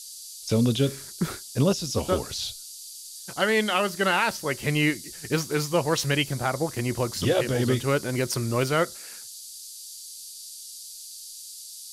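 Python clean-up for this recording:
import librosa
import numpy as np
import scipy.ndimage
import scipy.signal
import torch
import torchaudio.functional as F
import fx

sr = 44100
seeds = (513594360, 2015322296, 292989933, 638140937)

y = fx.notch(x, sr, hz=4700.0, q=30.0)
y = fx.noise_reduce(y, sr, print_start_s=2.63, print_end_s=3.13, reduce_db=29.0)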